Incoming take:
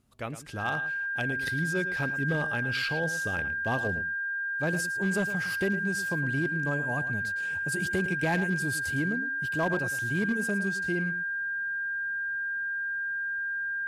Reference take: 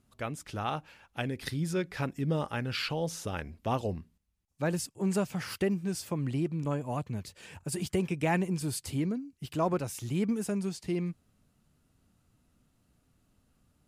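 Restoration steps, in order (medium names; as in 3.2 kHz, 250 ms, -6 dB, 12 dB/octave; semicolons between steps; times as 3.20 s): clip repair -21 dBFS; band-stop 1.6 kHz, Q 30; inverse comb 110 ms -13 dB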